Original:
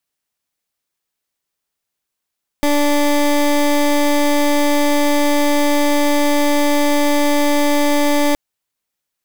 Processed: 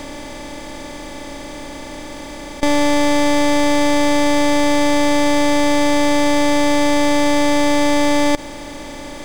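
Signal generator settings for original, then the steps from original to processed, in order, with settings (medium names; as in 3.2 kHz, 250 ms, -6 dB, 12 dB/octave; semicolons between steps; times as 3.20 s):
pulse 291 Hz, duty 21% -14 dBFS 5.72 s
spectral levelling over time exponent 0.2; Savitzky-Golay filter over 9 samples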